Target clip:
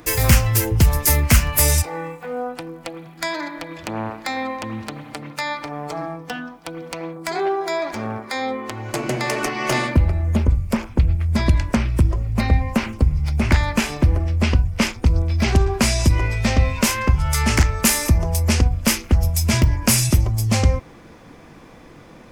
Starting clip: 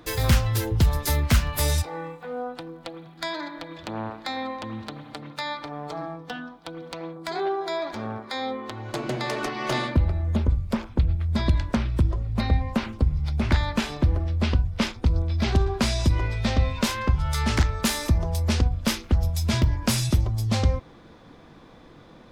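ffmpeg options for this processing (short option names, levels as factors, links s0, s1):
-af "aexciter=amount=1.4:drive=3.3:freq=2000,volume=1.78"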